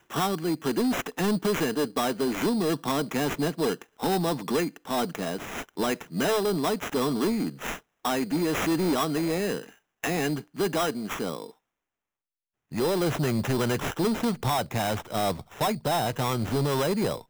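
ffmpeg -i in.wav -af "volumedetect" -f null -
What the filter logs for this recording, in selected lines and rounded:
mean_volume: -27.6 dB
max_volume: -20.5 dB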